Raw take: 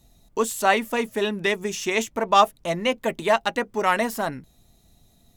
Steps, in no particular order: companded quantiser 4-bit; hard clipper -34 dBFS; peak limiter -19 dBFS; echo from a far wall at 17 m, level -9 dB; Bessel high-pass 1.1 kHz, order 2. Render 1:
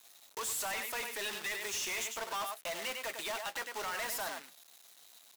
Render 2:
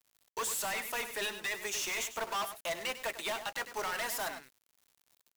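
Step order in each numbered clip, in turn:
peak limiter > echo from a far wall > companded quantiser > Bessel high-pass > hard clipper; Bessel high-pass > peak limiter > hard clipper > echo from a far wall > companded quantiser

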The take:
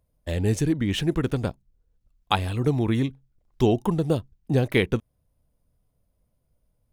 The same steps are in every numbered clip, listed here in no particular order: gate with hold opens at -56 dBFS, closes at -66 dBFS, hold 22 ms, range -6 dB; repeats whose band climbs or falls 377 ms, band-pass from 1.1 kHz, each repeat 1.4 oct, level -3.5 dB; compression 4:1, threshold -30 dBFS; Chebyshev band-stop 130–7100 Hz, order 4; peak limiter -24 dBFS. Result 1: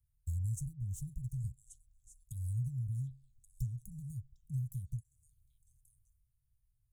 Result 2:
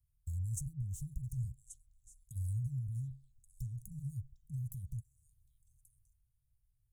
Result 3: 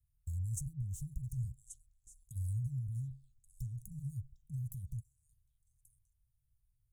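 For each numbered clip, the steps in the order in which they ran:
compression > repeats whose band climbs or falls > gate with hold > Chebyshev band-stop > peak limiter; peak limiter > compression > repeats whose band climbs or falls > gate with hold > Chebyshev band-stop; peak limiter > repeats whose band climbs or falls > compression > Chebyshev band-stop > gate with hold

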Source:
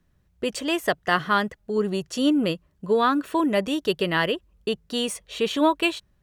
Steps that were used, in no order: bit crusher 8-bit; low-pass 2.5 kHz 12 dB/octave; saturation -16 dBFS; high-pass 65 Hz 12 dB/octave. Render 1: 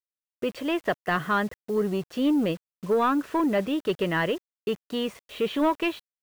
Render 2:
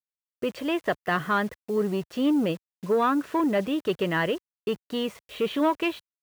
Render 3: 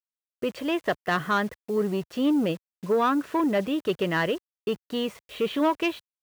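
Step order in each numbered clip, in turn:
high-pass > saturation > low-pass > bit crusher; saturation > low-pass > bit crusher > high-pass; low-pass > saturation > bit crusher > high-pass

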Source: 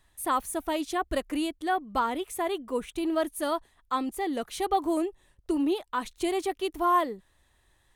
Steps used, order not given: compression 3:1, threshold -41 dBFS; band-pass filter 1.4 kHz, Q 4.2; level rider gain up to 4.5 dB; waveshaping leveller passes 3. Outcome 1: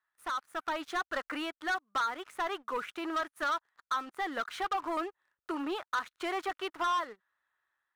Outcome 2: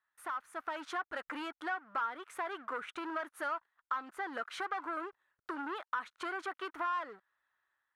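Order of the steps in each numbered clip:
band-pass filter > compression > waveshaping leveller > level rider; waveshaping leveller > band-pass filter > compression > level rider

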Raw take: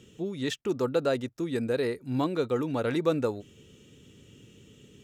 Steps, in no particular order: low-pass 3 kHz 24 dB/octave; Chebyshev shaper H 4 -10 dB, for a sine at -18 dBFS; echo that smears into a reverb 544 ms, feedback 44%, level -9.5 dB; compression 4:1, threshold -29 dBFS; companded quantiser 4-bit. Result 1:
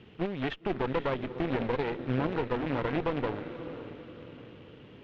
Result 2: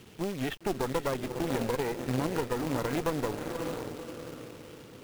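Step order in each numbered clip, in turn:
compression > companded quantiser > echo that smears into a reverb > Chebyshev shaper > low-pass; echo that smears into a reverb > compression > Chebyshev shaper > low-pass > companded quantiser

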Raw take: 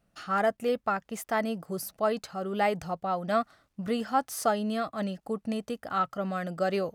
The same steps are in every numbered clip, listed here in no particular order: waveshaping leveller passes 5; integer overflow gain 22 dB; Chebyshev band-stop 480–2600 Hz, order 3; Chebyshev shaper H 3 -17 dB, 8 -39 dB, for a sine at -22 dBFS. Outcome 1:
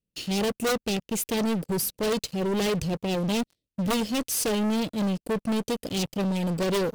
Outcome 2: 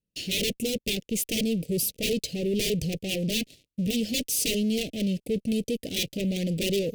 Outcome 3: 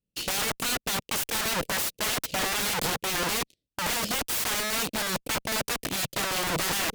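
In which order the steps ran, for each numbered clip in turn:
Chebyshev shaper > Chebyshev band-stop > integer overflow > waveshaping leveller; integer overflow > waveshaping leveller > Chebyshev shaper > Chebyshev band-stop; waveshaping leveller > Chebyshev band-stop > integer overflow > Chebyshev shaper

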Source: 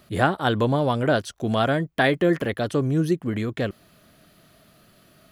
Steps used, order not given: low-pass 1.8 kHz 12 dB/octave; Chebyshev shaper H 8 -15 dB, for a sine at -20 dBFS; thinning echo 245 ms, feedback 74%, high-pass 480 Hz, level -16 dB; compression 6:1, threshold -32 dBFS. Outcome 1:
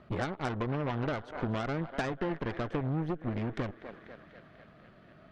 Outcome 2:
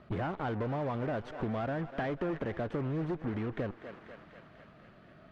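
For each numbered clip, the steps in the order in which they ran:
thinning echo > compression > low-pass > Chebyshev shaper; Chebyshev shaper > thinning echo > compression > low-pass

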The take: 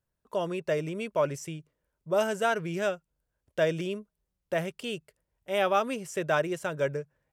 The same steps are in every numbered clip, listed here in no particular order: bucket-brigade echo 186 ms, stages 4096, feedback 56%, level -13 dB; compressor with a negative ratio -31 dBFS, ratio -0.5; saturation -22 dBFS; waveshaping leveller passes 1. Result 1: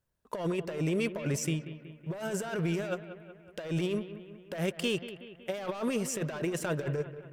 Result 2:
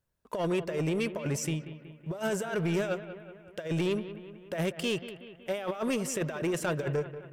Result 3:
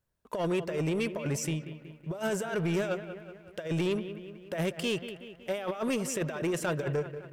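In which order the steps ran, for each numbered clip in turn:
waveshaping leveller > saturation > compressor with a negative ratio > bucket-brigade echo; compressor with a negative ratio > waveshaping leveller > saturation > bucket-brigade echo; compressor with a negative ratio > saturation > bucket-brigade echo > waveshaping leveller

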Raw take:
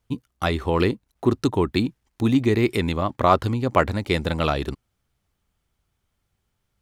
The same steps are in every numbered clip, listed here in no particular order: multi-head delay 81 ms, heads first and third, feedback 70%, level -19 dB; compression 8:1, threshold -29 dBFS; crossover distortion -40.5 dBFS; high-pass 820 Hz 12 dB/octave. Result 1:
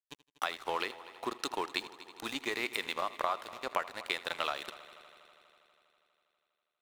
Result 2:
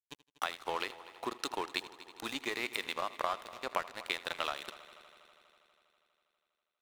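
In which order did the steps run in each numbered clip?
high-pass > crossover distortion > compression > multi-head delay; high-pass > compression > crossover distortion > multi-head delay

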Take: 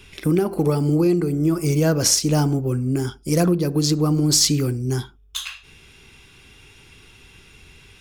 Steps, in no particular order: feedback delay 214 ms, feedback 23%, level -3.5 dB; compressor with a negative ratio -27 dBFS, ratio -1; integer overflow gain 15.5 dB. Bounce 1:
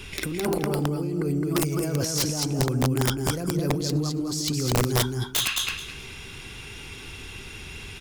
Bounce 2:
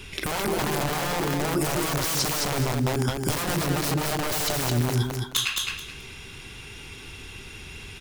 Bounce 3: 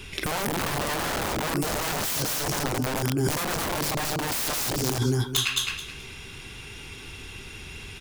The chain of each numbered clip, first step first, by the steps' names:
compressor with a negative ratio > feedback delay > integer overflow; integer overflow > compressor with a negative ratio > feedback delay; feedback delay > integer overflow > compressor with a negative ratio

